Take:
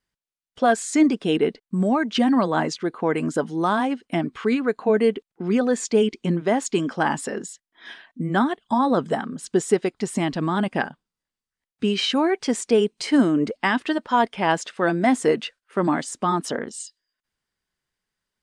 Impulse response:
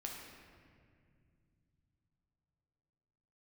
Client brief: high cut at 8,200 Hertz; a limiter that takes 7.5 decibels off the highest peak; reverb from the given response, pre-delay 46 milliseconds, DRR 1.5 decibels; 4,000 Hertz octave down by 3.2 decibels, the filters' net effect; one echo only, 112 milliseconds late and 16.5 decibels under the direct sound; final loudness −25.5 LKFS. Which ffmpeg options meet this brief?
-filter_complex "[0:a]lowpass=8200,equalizer=frequency=4000:width_type=o:gain=-4.5,alimiter=limit=-13.5dB:level=0:latency=1,aecho=1:1:112:0.15,asplit=2[link_01][link_02];[1:a]atrim=start_sample=2205,adelay=46[link_03];[link_02][link_03]afir=irnorm=-1:irlink=0,volume=0dB[link_04];[link_01][link_04]amix=inputs=2:normalize=0,volume=-3.5dB"

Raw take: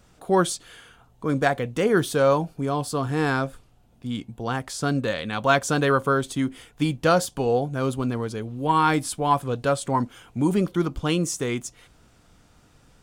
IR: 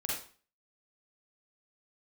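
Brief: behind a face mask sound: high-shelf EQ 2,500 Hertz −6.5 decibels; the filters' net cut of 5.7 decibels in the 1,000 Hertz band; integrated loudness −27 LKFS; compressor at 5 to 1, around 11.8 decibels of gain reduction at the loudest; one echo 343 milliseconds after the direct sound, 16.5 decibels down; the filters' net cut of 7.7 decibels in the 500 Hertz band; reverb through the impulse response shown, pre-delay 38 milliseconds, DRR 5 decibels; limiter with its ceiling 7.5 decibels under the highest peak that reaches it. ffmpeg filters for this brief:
-filter_complex "[0:a]equalizer=frequency=500:width_type=o:gain=-8.5,equalizer=frequency=1000:width_type=o:gain=-3.5,acompressor=threshold=-32dB:ratio=5,alimiter=level_in=4dB:limit=-24dB:level=0:latency=1,volume=-4dB,aecho=1:1:343:0.15,asplit=2[link_01][link_02];[1:a]atrim=start_sample=2205,adelay=38[link_03];[link_02][link_03]afir=irnorm=-1:irlink=0,volume=-9dB[link_04];[link_01][link_04]amix=inputs=2:normalize=0,highshelf=frequency=2500:gain=-6.5,volume=11dB"

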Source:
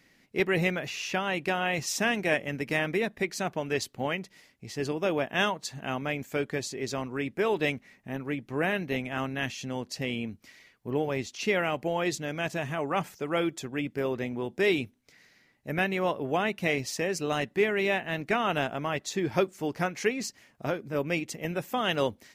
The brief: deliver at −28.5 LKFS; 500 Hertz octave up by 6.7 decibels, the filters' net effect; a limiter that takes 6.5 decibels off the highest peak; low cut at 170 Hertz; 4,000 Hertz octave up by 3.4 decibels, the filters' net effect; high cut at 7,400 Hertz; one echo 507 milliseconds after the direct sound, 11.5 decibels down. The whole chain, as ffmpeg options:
ffmpeg -i in.wav -af "highpass=170,lowpass=7400,equalizer=frequency=500:width_type=o:gain=8.5,equalizer=frequency=4000:width_type=o:gain=5,alimiter=limit=-13dB:level=0:latency=1,aecho=1:1:507:0.266,volume=-2dB" out.wav

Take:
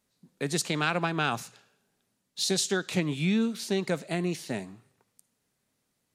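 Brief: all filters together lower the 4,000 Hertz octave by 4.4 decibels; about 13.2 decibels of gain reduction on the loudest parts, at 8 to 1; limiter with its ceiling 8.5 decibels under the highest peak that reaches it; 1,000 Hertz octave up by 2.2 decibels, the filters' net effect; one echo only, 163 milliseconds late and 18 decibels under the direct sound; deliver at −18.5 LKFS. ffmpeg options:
ffmpeg -i in.wav -af "equalizer=frequency=1000:width_type=o:gain=3.5,equalizer=frequency=4000:width_type=o:gain=-5.5,acompressor=threshold=-36dB:ratio=8,alimiter=level_in=7.5dB:limit=-24dB:level=0:latency=1,volume=-7.5dB,aecho=1:1:163:0.126,volume=24dB" out.wav

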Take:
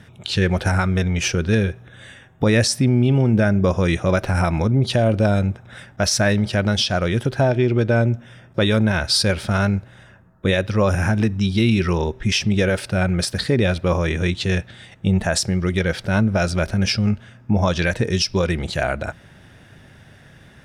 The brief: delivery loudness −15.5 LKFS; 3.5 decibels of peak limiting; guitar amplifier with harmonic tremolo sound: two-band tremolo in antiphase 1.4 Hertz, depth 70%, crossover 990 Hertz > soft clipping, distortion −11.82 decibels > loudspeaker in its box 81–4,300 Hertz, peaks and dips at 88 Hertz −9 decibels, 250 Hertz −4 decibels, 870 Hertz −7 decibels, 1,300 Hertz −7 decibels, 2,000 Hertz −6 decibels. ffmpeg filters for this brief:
ffmpeg -i in.wav -filter_complex "[0:a]alimiter=limit=-11dB:level=0:latency=1,acrossover=split=990[link_01][link_02];[link_01]aeval=exprs='val(0)*(1-0.7/2+0.7/2*cos(2*PI*1.4*n/s))':channel_layout=same[link_03];[link_02]aeval=exprs='val(0)*(1-0.7/2-0.7/2*cos(2*PI*1.4*n/s))':channel_layout=same[link_04];[link_03][link_04]amix=inputs=2:normalize=0,asoftclip=threshold=-20.5dB,highpass=81,equalizer=frequency=88:width_type=q:width=4:gain=-9,equalizer=frequency=250:width_type=q:width=4:gain=-4,equalizer=frequency=870:width_type=q:width=4:gain=-7,equalizer=frequency=1300:width_type=q:width=4:gain=-7,equalizer=frequency=2000:width_type=q:width=4:gain=-6,lowpass=frequency=4300:width=0.5412,lowpass=frequency=4300:width=1.3066,volume=15dB" out.wav

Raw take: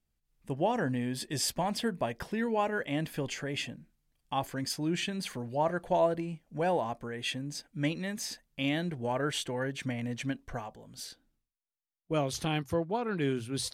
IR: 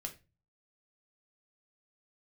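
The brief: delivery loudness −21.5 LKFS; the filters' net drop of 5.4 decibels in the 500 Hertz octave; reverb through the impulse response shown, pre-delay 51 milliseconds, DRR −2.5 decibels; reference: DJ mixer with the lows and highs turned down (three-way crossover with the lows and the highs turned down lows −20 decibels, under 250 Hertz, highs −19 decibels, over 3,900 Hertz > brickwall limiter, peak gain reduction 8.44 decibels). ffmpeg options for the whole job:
-filter_complex "[0:a]equalizer=frequency=500:width_type=o:gain=-6.5,asplit=2[link_01][link_02];[1:a]atrim=start_sample=2205,adelay=51[link_03];[link_02][link_03]afir=irnorm=-1:irlink=0,volume=4.5dB[link_04];[link_01][link_04]amix=inputs=2:normalize=0,acrossover=split=250 3900:gain=0.1 1 0.112[link_05][link_06][link_07];[link_05][link_06][link_07]amix=inputs=3:normalize=0,volume=13.5dB,alimiter=limit=-9.5dB:level=0:latency=1"

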